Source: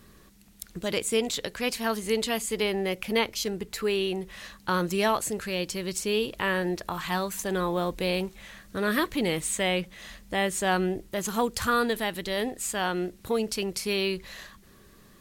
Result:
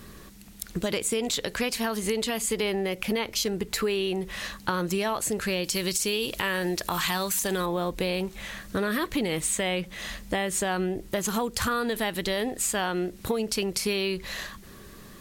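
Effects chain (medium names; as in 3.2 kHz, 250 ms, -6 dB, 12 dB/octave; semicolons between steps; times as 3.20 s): 5.64–7.66 s: treble shelf 2.6 kHz +10 dB; peak limiter -17.5 dBFS, peak gain reduction 10.5 dB; compression, threshold -32 dBFS, peak gain reduction 9 dB; trim +8 dB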